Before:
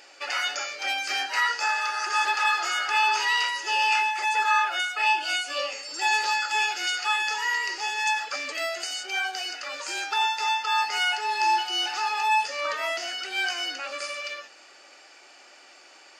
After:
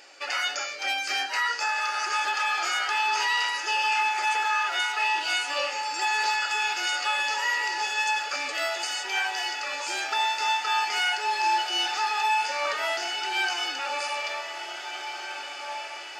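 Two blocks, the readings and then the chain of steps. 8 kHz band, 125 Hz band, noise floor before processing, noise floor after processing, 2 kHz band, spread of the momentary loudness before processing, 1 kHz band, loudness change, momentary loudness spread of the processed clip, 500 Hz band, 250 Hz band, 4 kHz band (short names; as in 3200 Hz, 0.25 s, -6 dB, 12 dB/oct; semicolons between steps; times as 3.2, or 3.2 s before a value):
0.0 dB, n/a, -52 dBFS, -37 dBFS, -0.5 dB, 8 LU, -1.0 dB, -1.0 dB, 7 LU, +0.5 dB, +0.5 dB, 0.0 dB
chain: limiter -17 dBFS, peak gain reduction 6 dB; diffused feedback echo 1.717 s, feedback 60%, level -9 dB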